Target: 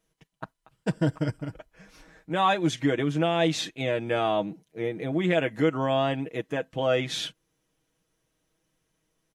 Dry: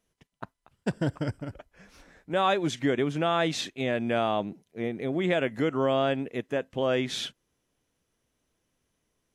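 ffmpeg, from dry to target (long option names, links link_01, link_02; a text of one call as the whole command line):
ffmpeg -i in.wav -af "aecho=1:1:6.3:0.65" out.wav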